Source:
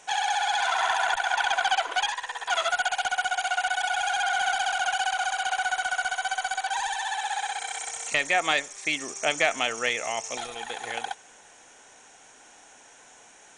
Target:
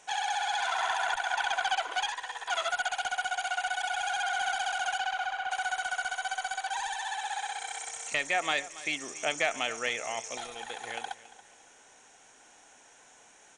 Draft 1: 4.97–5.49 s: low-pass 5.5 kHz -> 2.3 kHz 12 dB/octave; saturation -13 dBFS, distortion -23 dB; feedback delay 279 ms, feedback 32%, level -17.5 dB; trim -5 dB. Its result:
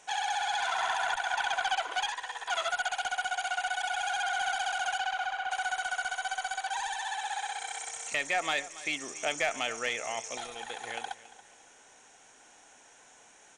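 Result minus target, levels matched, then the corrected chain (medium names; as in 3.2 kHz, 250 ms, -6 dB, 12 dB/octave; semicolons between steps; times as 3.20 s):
saturation: distortion +16 dB
4.97–5.49 s: low-pass 5.5 kHz -> 2.3 kHz 12 dB/octave; saturation -3.5 dBFS, distortion -39 dB; feedback delay 279 ms, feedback 32%, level -17.5 dB; trim -5 dB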